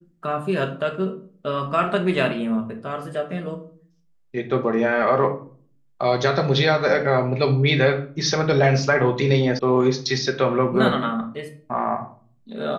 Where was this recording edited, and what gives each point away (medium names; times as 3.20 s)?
9.59 s: sound stops dead